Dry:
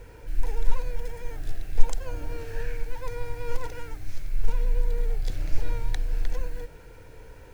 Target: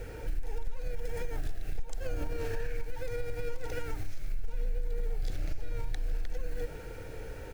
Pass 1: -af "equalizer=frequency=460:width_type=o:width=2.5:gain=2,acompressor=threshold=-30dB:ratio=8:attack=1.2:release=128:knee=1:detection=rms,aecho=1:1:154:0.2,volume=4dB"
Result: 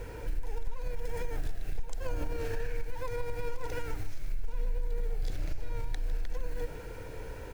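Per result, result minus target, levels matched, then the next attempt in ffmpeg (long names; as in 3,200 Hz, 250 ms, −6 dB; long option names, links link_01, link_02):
echo-to-direct +7.5 dB; 1,000 Hz band +3.0 dB
-af "equalizer=frequency=460:width_type=o:width=2.5:gain=2,acompressor=threshold=-30dB:ratio=8:attack=1.2:release=128:knee=1:detection=rms,aecho=1:1:154:0.0841,volume=4dB"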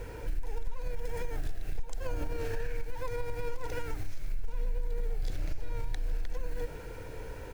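1,000 Hz band +3.5 dB
-af "equalizer=frequency=460:width_type=o:width=2.5:gain=2,acompressor=threshold=-30dB:ratio=8:attack=1.2:release=128:knee=1:detection=rms,asuperstop=centerf=1000:order=20:qfactor=7.6,aecho=1:1:154:0.0841,volume=4dB"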